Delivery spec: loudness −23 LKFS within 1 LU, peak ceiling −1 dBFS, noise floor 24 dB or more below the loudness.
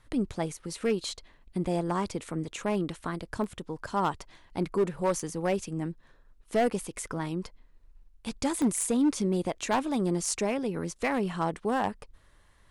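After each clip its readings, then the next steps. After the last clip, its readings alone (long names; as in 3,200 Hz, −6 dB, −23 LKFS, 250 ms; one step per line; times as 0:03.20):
share of clipped samples 1.0%; peaks flattened at −19.5 dBFS; number of dropouts 3; longest dropout 1.2 ms; integrated loudness −30.5 LKFS; sample peak −19.5 dBFS; target loudness −23.0 LKFS
→ clipped peaks rebuilt −19.5 dBFS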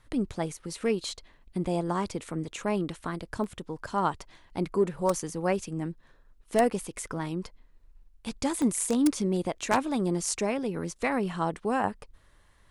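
share of clipped samples 0.0%; number of dropouts 3; longest dropout 1.2 ms
→ repair the gap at 0:03.44/0:08.62/0:09.73, 1.2 ms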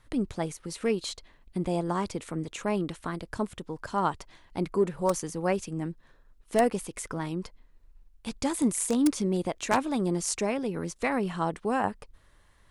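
number of dropouts 0; integrated loudness −30.0 LKFS; sample peak −10.5 dBFS; target loudness −23.0 LKFS
→ level +7 dB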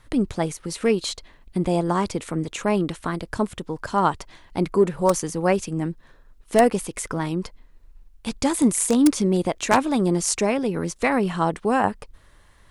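integrated loudness −23.0 LKFS; sample peak −3.5 dBFS; background noise floor −54 dBFS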